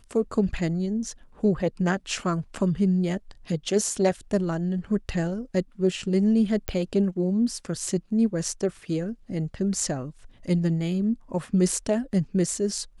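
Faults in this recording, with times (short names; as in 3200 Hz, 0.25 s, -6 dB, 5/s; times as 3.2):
6.68 pop -14 dBFS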